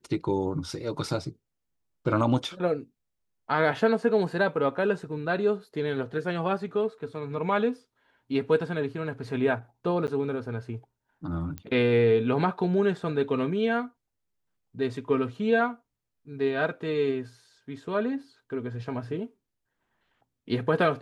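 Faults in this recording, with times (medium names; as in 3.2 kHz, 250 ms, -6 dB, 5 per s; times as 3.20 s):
10.07–10.08 s: dropout 9.8 ms
11.58 s: pop -22 dBFS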